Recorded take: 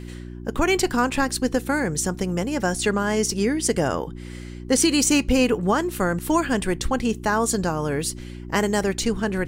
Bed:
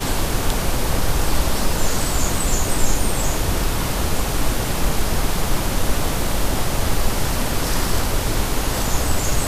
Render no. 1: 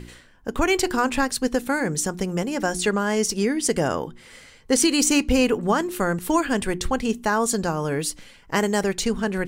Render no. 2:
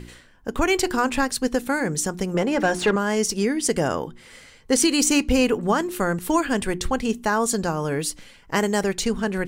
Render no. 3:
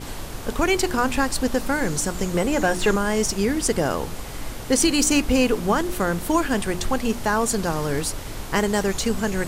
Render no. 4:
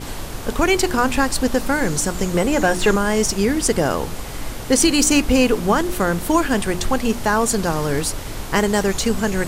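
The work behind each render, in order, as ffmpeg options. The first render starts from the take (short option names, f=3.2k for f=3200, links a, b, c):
-af "bandreject=f=60:t=h:w=4,bandreject=f=120:t=h:w=4,bandreject=f=180:t=h:w=4,bandreject=f=240:t=h:w=4,bandreject=f=300:t=h:w=4,bandreject=f=360:t=h:w=4"
-filter_complex "[0:a]asettb=1/sr,asplit=3[a][b][c];[a]atrim=end=2.344[d];[b]atrim=start=2.34:end=2.96,asetpts=PTS-STARTPTS,afade=t=in:d=0.004:c=qsin,afade=t=out:st=0.616:d=0.004:c=qsin,asplit=2[e][f];[f]highpass=f=720:p=1,volume=19dB,asoftclip=type=tanh:threshold=-8.5dB[g];[e][g]amix=inputs=2:normalize=0,lowpass=f=1.2k:p=1,volume=-6dB[h];[c]atrim=start=2.956[i];[d][h]acrossfade=d=0.004:c1=hsin:c2=qsin[j];[j][i]acrossfade=d=0.004:c1=qsin:c2=hsin"
-filter_complex "[1:a]volume=-12.5dB[a];[0:a][a]amix=inputs=2:normalize=0"
-af "volume=3.5dB"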